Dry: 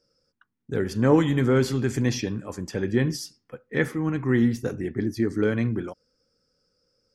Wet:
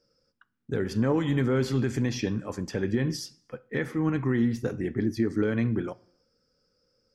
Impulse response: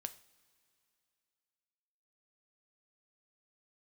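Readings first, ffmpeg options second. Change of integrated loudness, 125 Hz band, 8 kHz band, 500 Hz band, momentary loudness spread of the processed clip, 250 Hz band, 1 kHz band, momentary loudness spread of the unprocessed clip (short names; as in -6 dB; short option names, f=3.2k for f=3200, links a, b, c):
-3.0 dB, -2.5 dB, -4.5 dB, -4.0 dB, 9 LU, -2.5 dB, -4.5 dB, 12 LU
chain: -filter_complex "[0:a]alimiter=limit=-16.5dB:level=0:latency=1:release=189,asplit=2[a][b];[1:a]atrim=start_sample=2205,afade=t=out:st=0.36:d=0.01,atrim=end_sample=16317,lowpass=6.6k[c];[b][c]afir=irnorm=-1:irlink=0,volume=0dB[d];[a][d]amix=inputs=2:normalize=0,volume=-4dB"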